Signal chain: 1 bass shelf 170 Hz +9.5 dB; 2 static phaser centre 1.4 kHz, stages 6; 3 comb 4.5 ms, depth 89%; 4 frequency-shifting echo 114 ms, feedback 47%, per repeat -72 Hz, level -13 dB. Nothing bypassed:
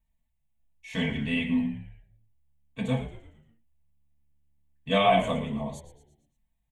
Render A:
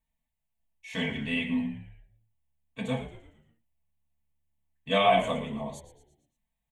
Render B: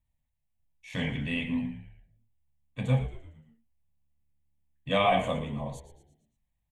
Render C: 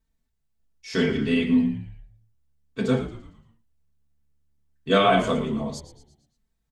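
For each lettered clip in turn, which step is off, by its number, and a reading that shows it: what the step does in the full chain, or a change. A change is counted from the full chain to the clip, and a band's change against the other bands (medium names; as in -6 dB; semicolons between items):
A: 1, 125 Hz band -4.5 dB; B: 3, loudness change -2.5 LU; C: 2, 250 Hz band +2.5 dB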